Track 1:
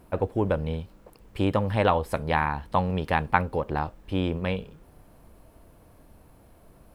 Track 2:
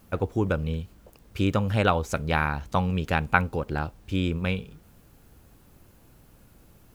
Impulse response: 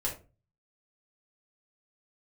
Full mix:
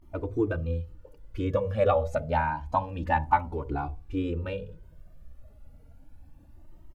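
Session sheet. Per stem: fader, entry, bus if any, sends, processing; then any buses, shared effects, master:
+1.0 dB, 0.00 s, send −11 dB, gate on every frequency bin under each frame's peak −10 dB strong
−3.5 dB, 3.3 ms, no send, comb filter 3.4 ms, depth 61%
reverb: on, RT60 0.30 s, pre-delay 3 ms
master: pitch vibrato 0.47 Hz 79 cents; high-shelf EQ 3,200 Hz −11 dB; flanger whose copies keep moving one way rising 0.29 Hz

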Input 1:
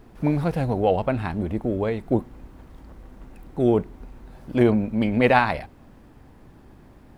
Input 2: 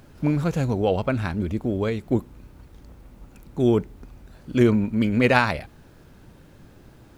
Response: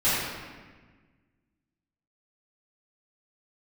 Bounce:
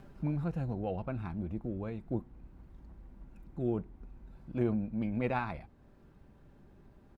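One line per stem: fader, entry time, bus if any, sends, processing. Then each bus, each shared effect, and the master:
−15.0 dB, 0.00 s, no send, low-shelf EQ 180 Hz +5 dB
−3.5 dB, 0.7 ms, no send, comb filter 5.1 ms; downward compressor 1.5 to 1, threshold −44 dBFS, peak gain reduction 12 dB; automatic ducking −10 dB, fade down 0.35 s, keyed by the first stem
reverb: not used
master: high-shelf EQ 3,000 Hz −11 dB

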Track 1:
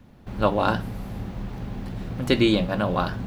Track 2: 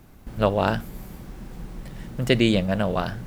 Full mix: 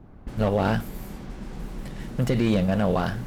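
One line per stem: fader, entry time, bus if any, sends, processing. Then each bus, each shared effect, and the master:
−11.5 dB, 0.00 s, no send, no processing
+2.5 dB, 0.00 s, polarity flipped, no send, low-pass that shuts in the quiet parts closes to 740 Hz, open at −31.5 dBFS; slew-rate limiting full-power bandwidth 94 Hz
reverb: not used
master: brickwall limiter −12.5 dBFS, peak gain reduction 8.5 dB

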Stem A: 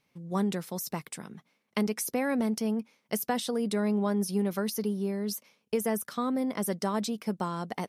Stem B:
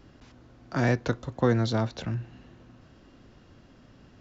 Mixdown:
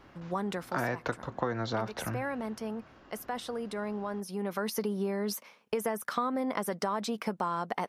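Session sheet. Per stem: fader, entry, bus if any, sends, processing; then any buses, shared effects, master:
−0.5 dB, 0.00 s, no send, brickwall limiter −22.5 dBFS, peak gain reduction 7.5 dB; automatic ducking −11 dB, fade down 1.05 s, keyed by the second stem
−7.0 dB, 0.00 s, no send, no processing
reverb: not used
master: parametric band 1,100 Hz +13 dB 2.8 octaves; downward compressor 6 to 1, threshold −28 dBFS, peak gain reduction 10 dB

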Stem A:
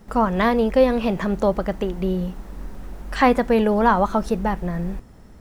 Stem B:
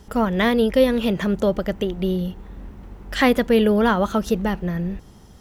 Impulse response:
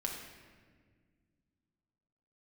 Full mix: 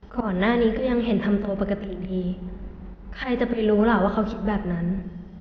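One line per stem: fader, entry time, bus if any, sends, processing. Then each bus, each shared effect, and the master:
−14.5 dB, 0.00 s, no send, brickwall limiter −15 dBFS, peak gain reduction 11.5 dB; high-shelf EQ 3,300 Hz +11.5 dB
+2.0 dB, 25 ms, send −11 dB, volume swells 130 ms; automatic ducking −9 dB, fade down 0.45 s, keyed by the first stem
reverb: on, RT60 1.7 s, pre-delay 5 ms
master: Bessel low-pass filter 2,800 Hz, order 8

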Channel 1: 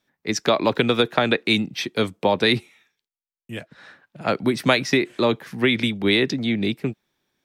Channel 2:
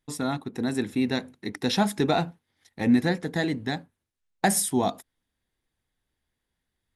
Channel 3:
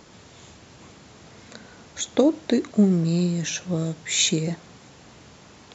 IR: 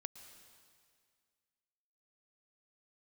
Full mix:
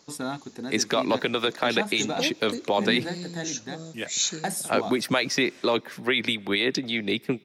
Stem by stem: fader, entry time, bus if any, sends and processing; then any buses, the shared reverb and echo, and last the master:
+1.0 dB, 0.45 s, send −13.5 dB, harmonic and percussive parts rebalanced harmonic −9 dB; brickwall limiter −14 dBFS, peak gain reduction 9.5 dB
+0.5 dB, 0.00 s, no send, notch filter 2,000 Hz; automatic ducking −7 dB, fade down 0.85 s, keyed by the third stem
−11.0 dB, 0.00 s, no send, flat-topped bell 5,200 Hz +9 dB 1 octave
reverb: on, RT60 2.0 s, pre-delay 105 ms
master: low-shelf EQ 140 Hz −10.5 dB

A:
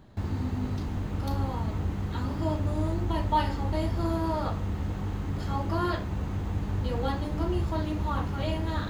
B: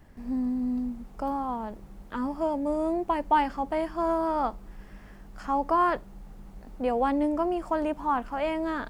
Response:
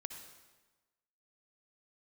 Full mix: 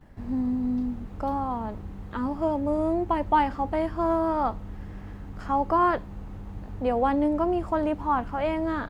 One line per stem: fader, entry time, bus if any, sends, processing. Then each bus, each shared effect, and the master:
−10.0 dB, 0.00 s, no send, no processing
+2.0 dB, 10 ms, no send, no processing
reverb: not used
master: high-shelf EQ 3,500 Hz −7.5 dB

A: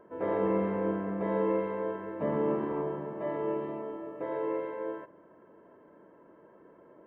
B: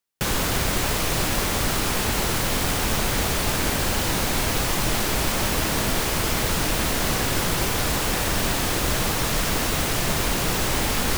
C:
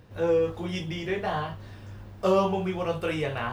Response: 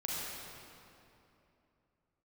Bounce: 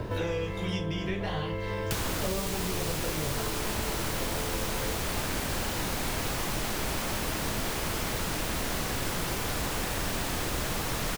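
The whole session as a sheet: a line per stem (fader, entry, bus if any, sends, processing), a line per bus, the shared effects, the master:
−3.0 dB, 0.00 s, no send, downward compressor, threshold −31 dBFS, peak gain reduction 7 dB
−9.0 dB, 1.70 s, no send, no processing
−9.5 dB, 0.00 s, no send, spectral tilt −2.5 dB per octave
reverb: not used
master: multiband upward and downward compressor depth 100%

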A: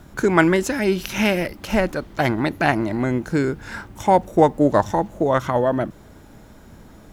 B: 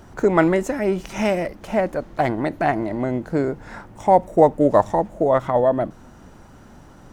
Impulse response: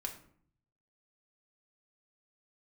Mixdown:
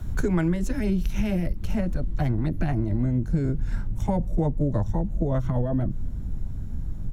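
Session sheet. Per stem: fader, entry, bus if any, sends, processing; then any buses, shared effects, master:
−2.5 dB, 0.00 s, no send, high-pass filter 370 Hz 6 dB per octave; notch filter 4,900 Hz, Q 16; automatic gain control gain up to 4 dB; automatic ducking −12 dB, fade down 1.25 s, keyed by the second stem
−12.0 dB, 12 ms, polarity flipped, no send, spectral tilt −4.5 dB per octave; rotating-speaker cabinet horn 8 Hz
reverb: not used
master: bass and treble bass +14 dB, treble +3 dB; downward compressor, threshold −20 dBFS, peak gain reduction 11 dB

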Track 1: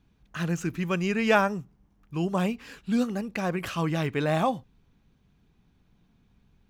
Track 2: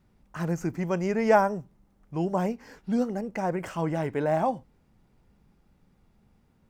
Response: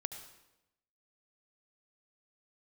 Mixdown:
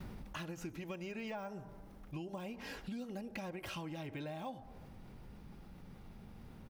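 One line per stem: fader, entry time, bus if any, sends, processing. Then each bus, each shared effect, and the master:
0.0 dB, 0.00 s, no send, de-essing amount 95%; flat-topped bell 740 Hz −10 dB 2.8 octaves; downward compressor, threshold −30 dBFS, peak gain reduction 7.5 dB
−6.5 dB, 3.8 ms, send −14 dB, envelope flattener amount 50%; automatic ducking −12 dB, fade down 0.45 s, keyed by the first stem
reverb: on, RT60 0.95 s, pre-delay 67 ms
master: parametric band 7,300 Hz −6 dB 0.46 octaves; downward compressor 6 to 1, threshold −41 dBFS, peak gain reduction 14 dB

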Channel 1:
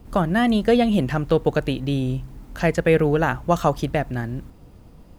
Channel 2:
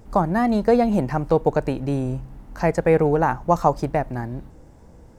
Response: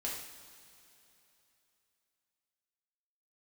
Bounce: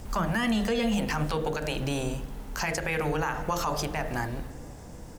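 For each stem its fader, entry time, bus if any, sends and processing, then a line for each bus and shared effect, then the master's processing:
+2.0 dB, 0.00 s, send −14.5 dB, mains-hum notches 50/100/150/200 Hz; automatic ducking −7 dB, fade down 1.95 s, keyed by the second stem
+2.0 dB, 0.5 ms, polarity flipped, no send, high-shelf EQ 2,500 Hz +11.5 dB; downward compressor 4 to 1, threshold −19 dBFS, peak gain reduction 8 dB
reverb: on, pre-delay 3 ms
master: brickwall limiter −18.5 dBFS, peak gain reduction 9 dB

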